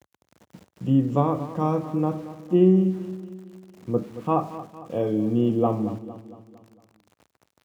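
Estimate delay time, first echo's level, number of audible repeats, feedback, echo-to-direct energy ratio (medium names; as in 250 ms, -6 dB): 228 ms, -14.0 dB, 4, 51%, -12.5 dB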